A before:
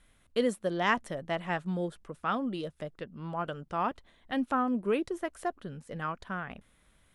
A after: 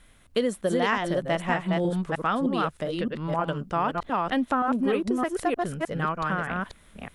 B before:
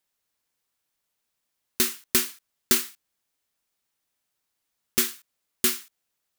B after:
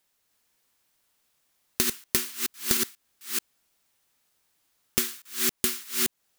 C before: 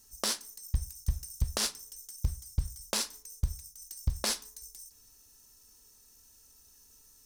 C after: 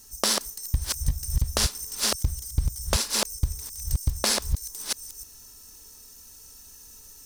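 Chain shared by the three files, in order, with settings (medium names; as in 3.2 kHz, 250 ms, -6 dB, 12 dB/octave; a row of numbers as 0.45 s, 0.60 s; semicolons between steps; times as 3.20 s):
chunks repeated in reverse 308 ms, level -2.5 dB; compression 5:1, threshold -29 dBFS; normalise loudness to -27 LUFS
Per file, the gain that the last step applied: +8.0 dB, +6.5 dB, +9.5 dB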